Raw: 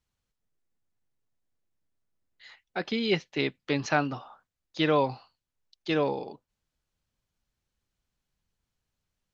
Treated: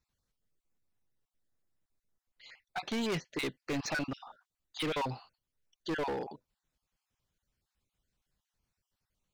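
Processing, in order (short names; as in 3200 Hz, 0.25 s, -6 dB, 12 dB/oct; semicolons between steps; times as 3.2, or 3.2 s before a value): random spectral dropouts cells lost 26%; overloaded stage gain 30.5 dB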